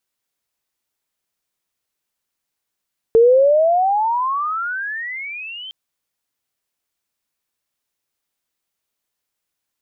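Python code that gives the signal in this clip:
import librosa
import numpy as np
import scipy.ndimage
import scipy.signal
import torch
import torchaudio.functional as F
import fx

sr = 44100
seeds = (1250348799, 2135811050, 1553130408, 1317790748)

y = fx.riser_tone(sr, length_s=2.56, level_db=-7.0, wave='sine', hz=445.0, rise_st=34.0, swell_db=-23.0)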